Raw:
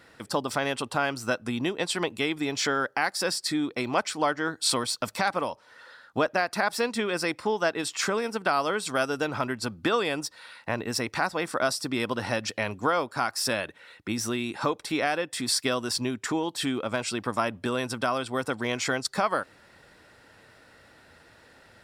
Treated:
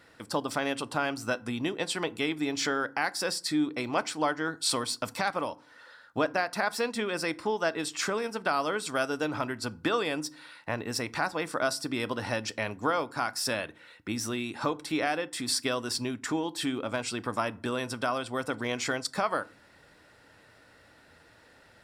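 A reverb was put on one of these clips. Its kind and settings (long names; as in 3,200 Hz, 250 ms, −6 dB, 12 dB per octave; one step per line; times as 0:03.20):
feedback delay network reverb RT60 0.4 s, low-frequency decay 1.55×, high-frequency decay 0.6×, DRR 15 dB
level −3 dB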